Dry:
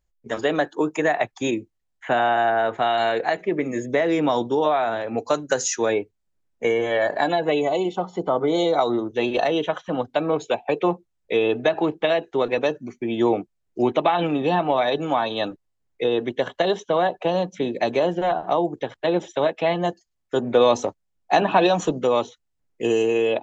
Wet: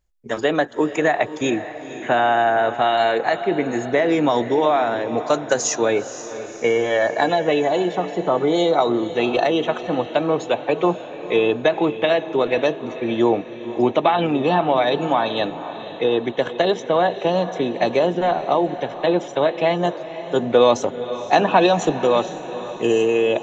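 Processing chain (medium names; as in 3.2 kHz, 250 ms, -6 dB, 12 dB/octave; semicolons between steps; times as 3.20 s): echo that smears into a reverb 503 ms, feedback 50%, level -12.5 dB; tempo 1×; trim +2.5 dB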